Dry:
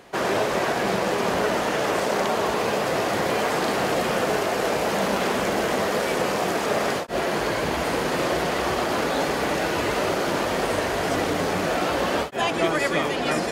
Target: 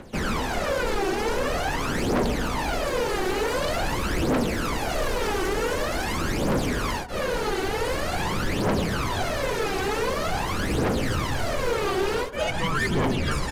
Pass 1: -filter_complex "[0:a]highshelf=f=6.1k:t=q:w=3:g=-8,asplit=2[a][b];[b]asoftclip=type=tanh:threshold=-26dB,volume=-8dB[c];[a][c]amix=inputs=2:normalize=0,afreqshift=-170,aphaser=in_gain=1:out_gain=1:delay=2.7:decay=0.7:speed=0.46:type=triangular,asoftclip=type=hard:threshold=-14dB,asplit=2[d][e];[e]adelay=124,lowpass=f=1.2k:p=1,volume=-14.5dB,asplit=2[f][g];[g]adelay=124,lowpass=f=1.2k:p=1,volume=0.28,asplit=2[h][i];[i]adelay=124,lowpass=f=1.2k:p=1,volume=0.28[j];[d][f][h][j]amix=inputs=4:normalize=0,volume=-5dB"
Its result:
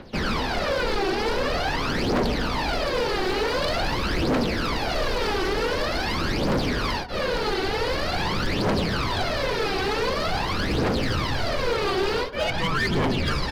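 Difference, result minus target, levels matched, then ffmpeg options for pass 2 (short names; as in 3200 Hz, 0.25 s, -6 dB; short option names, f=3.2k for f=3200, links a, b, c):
8000 Hz band -6.0 dB; soft clip: distortion -4 dB
-filter_complex "[0:a]asplit=2[a][b];[b]asoftclip=type=tanh:threshold=-36dB,volume=-8dB[c];[a][c]amix=inputs=2:normalize=0,afreqshift=-170,aphaser=in_gain=1:out_gain=1:delay=2.7:decay=0.7:speed=0.46:type=triangular,asoftclip=type=hard:threshold=-14dB,asplit=2[d][e];[e]adelay=124,lowpass=f=1.2k:p=1,volume=-14.5dB,asplit=2[f][g];[g]adelay=124,lowpass=f=1.2k:p=1,volume=0.28,asplit=2[h][i];[i]adelay=124,lowpass=f=1.2k:p=1,volume=0.28[j];[d][f][h][j]amix=inputs=4:normalize=0,volume=-5dB"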